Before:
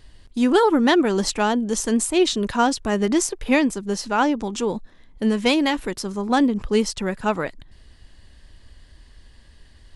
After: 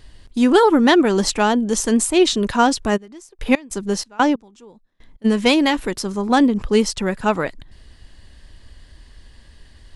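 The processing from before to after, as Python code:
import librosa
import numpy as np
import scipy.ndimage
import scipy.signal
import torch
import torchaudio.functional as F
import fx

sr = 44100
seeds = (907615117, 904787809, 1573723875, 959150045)

y = fx.step_gate(x, sr, bpm=93, pattern='.x.xx.x...', floor_db=-24.0, edge_ms=4.5, at=(2.96, 5.24), fade=0.02)
y = F.gain(torch.from_numpy(y), 3.5).numpy()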